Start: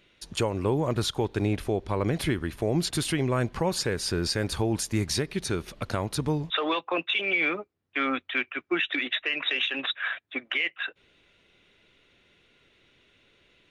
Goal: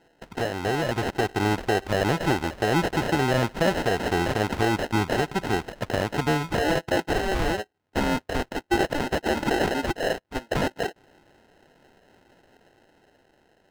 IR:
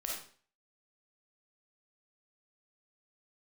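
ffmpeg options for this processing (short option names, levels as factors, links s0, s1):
-filter_complex "[0:a]acrusher=samples=38:mix=1:aa=0.000001,asplit=2[s0][s1];[s1]highpass=f=720:p=1,volume=3.16,asoftclip=type=tanh:threshold=0.168[s2];[s0][s2]amix=inputs=2:normalize=0,lowpass=f=3200:p=1,volume=0.501,dynaudnorm=f=120:g=17:m=1.78"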